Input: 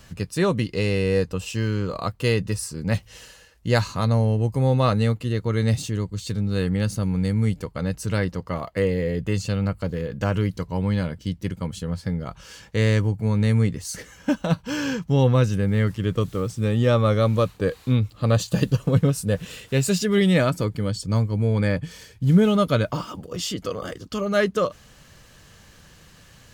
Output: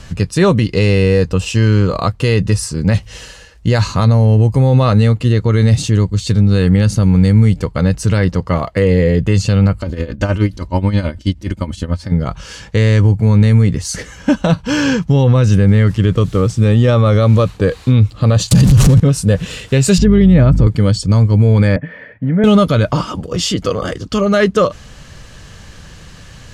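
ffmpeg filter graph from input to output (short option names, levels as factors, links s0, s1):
-filter_complex "[0:a]asettb=1/sr,asplit=3[s0][s1][s2];[s0]atrim=end=9.804[s3];[s1]atrim=start=9.8:end=12.12,asetpts=PTS-STARTPTS,afade=t=in:d=0.004:c=qsin,afade=t=out:st=2.316:d=0.004:c=qsin,aecho=1:1:3.3:0.63,atrim=end_sample=102312,tremolo=f=9.4:d=0.77[s4];[s2]atrim=start=12.116[s5];[s3][s4]acrossfade=d=0.004:c1=hsin:c2=qsin[s6];[s6][s5]acrossfade=d=0.004:c1=qsin:c2=hsin,asettb=1/sr,asplit=3[s7][s8][s9];[s7]atrim=end=18.514[s10];[s8]atrim=start=18.51:end=19,asetpts=PTS-STARTPTS,afade=t=in:d=0.004:c=qsin,afade=t=out:st=0.486:d=0.004:c=qsin,aeval=exprs='val(0)+0.5*0.0596*sgn(val(0))':c=same,highpass=f=57:p=1,bass=f=250:g=13,treble=f=4000:g=9[s11];[s9]atrim=start=18.996[s12];[s10][s11]acrossfade=d=0.004:c1=hsin:c2=qsin[s13];[s13][s12]acrossfade=d=0.004:c1=qsin:c2=hsin,asettb=1/sr,asplit=3[s14][s15][s16];[s14]atrim=end=19.984[s17];[s15]atrim=start=19.98:end=20.67,asetpts=PTS-STARTPTS,afade=t=in:d=0.004:c=qsin,afade=t=out:st=0.686:d=0.004:c=qsin,aemphasis=mode=reproduction:type=riaa,acompressor=threshold=0.112:ratio=2.5:attack=3.2:release=140:knee=1:detection=peak,aeval=exprs='val(0)+0.0355*(sin(2*PI*50*n/s)+sin(2*PI*2*50*n/s)/2+sin(2*PI*3*50*n/s)/3+sin(2*PI*4*50*n/s)/4+sin(2*PI*5*50*n/s)/5)':c=same[s18];[s16]atrim=start=20.666[s19];[s17][s18]acrossfade=d=0.004:c1=hsin:c2=qsin[s20];[s20][s19]acrossfade=d=0.004:c1=qsin:c2=hsin,asettb=1/sr,asplit=3[s21][s22][s23];[s21]atrim=end=21.764[s24];[s22]atrim=start=21.76:end=22.44,asetpts=PTS-STARTPTS,afade=t=in:d=0.004:c=qsin,afade=t=out:st=0.676:d=0.004:c=qsin,acompressor=threshold=0.126:ratio=6:attack=3.2:release=140:knee=1:detection=peak,highpass=230,equalizer=f=260:t=q:w=4:g=5,equalizer=f=370:t=q:w=4:g=-9,equalizer=f=600:t=q:w=4:g=9,equalizer=f=850:t=q:w=4:g=-4,equalizer=f=1200:t=q:w=4:g=-4,equalizer=f=1900:t=q:w=4:g=9,lowpass=f=2000:w=0.5412,lowpass=f=2000:w=1.3066[s25];[s23]atrim=start=22.436[s26];[s24][s25]acrossfade=d=0.004:c1=hsin:c2=qsin[s27];[s27][s26]acrossfade=d=0.004:c1=qsin:c2=hsin,lowpass=8700,lowshelf=f=100:g=7.5,alimiter=level_in=3.98:limit=0.891:release=50:level=0:latency=1,volume=0.891"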